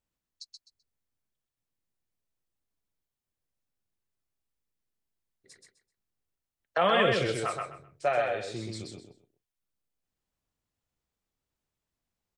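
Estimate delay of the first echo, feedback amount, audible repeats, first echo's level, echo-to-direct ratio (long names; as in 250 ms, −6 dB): 128 ms, 23%, 3, −3.5 dB, −3.5 dB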